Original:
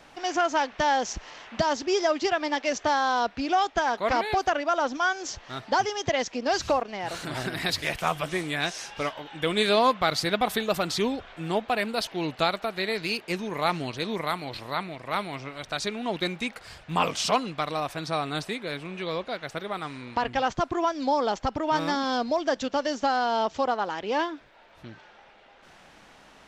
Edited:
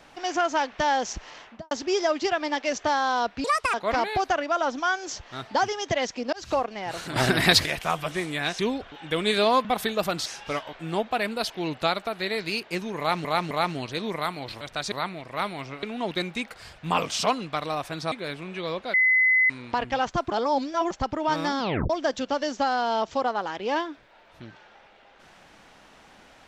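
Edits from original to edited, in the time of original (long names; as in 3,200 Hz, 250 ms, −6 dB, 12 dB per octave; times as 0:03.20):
0:01.37–0:01.71: fade out and dull
0:03.44–0:03.91: play speed 158%
0:06.50–0:06.75: fade in
0:07.33–0:07.83: clip gain +9.5 dB
0:08.76–0:09.23: swap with 0:10.97–0:11.30
0:09.96–0:10.36: remove
0:13.56–0:13.82: repeat, 3 plays
0:15.57–0:15.88: move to 0:14.66
0:18.17–0:18.55: remove
0:19.37–0:19.93: beep over 2,030 Hz −16.5 dBFS
0:20.75–0:21.34: reverse
0:22.03: tape stop 0.30 s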